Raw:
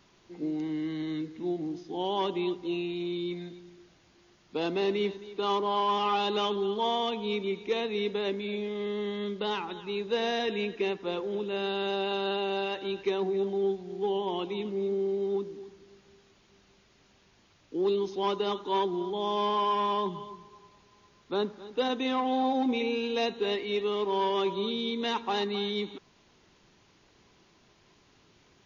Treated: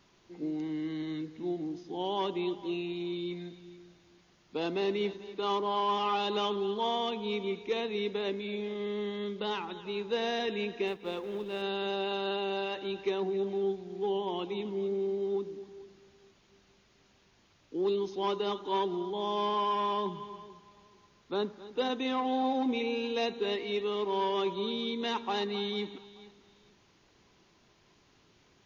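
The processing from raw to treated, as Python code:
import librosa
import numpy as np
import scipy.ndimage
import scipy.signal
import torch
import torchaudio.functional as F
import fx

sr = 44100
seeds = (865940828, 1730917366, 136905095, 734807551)

p1 = fx.law_mismatch(x, sr, coded='A', at=(10.87, 11.62))
p2 = p1 + fx.echo_feedback(p1, sr, ms=440, feedback_pct=26, wet_db=-19.0, dry=0)
y = p2 * 10.0 ** (-2.5 / 20.0)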